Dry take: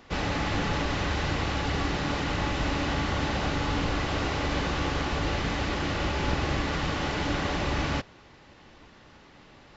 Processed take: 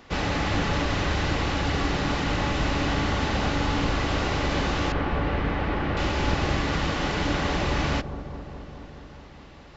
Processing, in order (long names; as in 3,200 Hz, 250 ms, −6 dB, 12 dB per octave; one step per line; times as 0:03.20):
0:04.92–0:05.97: low-pass filter 2,200 Hz 12 dB per octave
delay with a low-pass on its return 211 ms, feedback 76%, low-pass 830 Hz, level −11.5 dB
level +2.5 dB